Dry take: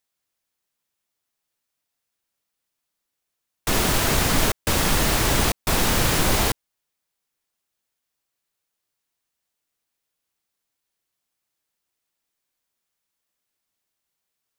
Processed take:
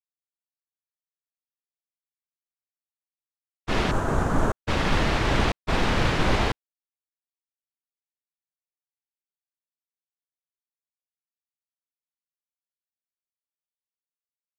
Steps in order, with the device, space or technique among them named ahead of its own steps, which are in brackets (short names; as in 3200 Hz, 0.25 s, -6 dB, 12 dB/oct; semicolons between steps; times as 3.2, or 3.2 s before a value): hearing-loss simulation (LPF 3200 Hz 12 dB/oct; expander -19 dBFS); 3.91–4.57 band shelf 3200 Hz -15 dB